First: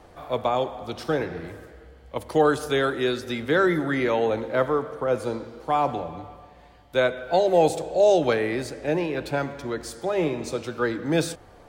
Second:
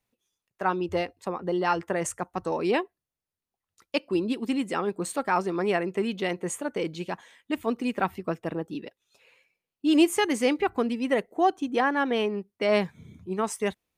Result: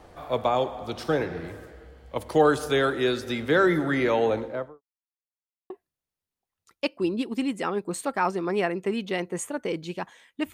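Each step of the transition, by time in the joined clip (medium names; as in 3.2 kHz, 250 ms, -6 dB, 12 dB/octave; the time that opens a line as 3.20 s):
first
4.27–4.82 s: studio fade out
4.82–5.70 s: mute
5.70 s: go over to second from 2.81 s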